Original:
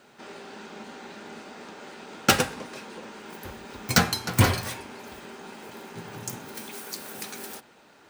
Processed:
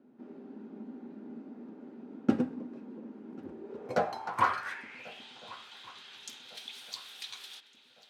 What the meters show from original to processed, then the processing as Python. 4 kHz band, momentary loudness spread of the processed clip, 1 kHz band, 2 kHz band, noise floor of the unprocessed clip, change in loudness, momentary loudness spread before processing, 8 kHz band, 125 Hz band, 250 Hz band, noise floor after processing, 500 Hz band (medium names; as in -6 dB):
-12.5 dB, 18 LU, -3.0 dB, -10.0 dB, -56 dBFS, -10.5 dB, 20 LU, -20.5 dB, -18.5 dB, -3.0 dB, -61 dBFS, -5.0 dB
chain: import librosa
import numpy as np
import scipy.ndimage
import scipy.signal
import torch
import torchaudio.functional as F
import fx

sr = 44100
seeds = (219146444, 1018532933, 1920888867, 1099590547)

y = fx.filter_sweep_bandpass(x, sr, from_hz=260.0, to_hz=3500.0, start_s=3.41, end_s=5.27, q=4.4)
y = fx.echo_swing(y, sr, ms=1455, ratio=3, feedback_pct=38, wet_db=-22.0)
y = y * librosa.db_to_amplitude(6.0)